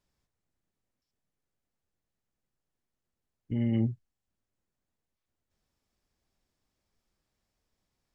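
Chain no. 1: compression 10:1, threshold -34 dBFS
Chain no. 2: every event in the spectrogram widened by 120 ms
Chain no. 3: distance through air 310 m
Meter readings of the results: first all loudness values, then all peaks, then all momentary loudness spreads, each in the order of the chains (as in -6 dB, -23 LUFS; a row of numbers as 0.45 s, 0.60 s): -40.0 LUFS, -29.0 LUFS, -31.0 LUFS; -27.5 dBFS, -17.0 dBFS, -19.5 dBFS; 10 LU, 12 LU, 11 LU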